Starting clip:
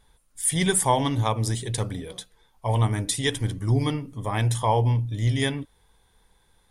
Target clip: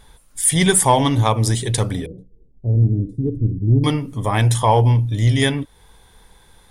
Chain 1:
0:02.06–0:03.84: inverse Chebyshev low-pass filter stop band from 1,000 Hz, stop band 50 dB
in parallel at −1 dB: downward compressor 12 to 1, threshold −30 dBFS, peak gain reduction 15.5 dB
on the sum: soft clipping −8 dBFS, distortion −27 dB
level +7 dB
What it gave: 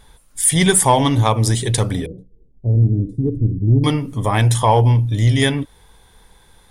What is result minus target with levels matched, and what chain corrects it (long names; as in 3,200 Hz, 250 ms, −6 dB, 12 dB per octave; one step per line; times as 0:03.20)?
downward compressor: peak gain reduction −9.5 dB
0:02.06–0:03.84: inverse Chebyshev low-pass filter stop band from 1,000 Hz, stop band 50 dB
in parallel at −1 dB: downward compressor 12 to 1, threshold −40.5 dBFS, peak gain reduction 25.5 dB
on the sum: soft clipping −8 dBFS, distortion −28 dB
level +7 dB